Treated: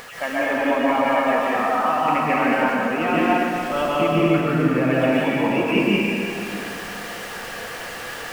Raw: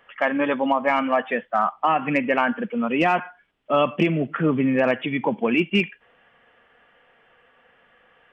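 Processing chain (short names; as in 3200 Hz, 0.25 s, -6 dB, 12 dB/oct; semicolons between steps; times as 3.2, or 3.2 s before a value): zero-crossing step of -34 dBFS; upward compressor, threshold -30 dBFS; plate-style reverb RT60 3 s, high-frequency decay 0.75×, pre-delay 0.115 s, DRR -7.5 dB; gain -6.5 dB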